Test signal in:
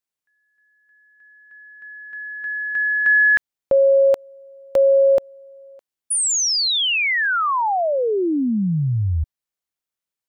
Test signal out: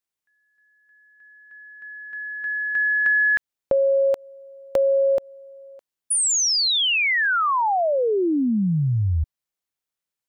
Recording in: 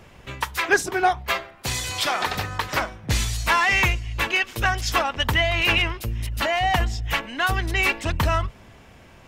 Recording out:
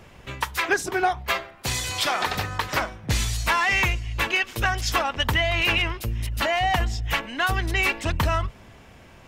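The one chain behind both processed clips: compression, threshold -17 dBFS

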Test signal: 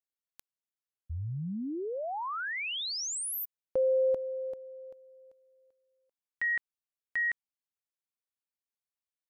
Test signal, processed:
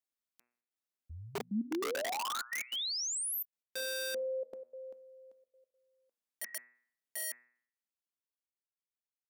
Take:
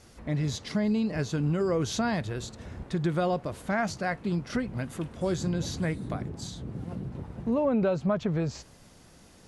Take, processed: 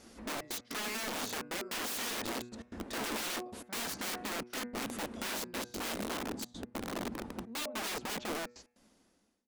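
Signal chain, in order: fade out at the end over 2.05 s; trance gate "xxxx.x.xxx" 149 bpm -24 dB; de-hum 121.2 Hz, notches 22; integer overflow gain 31.5 dB; resonant low shelf 180 Hz -7 dB, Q 3; trim -1 dB

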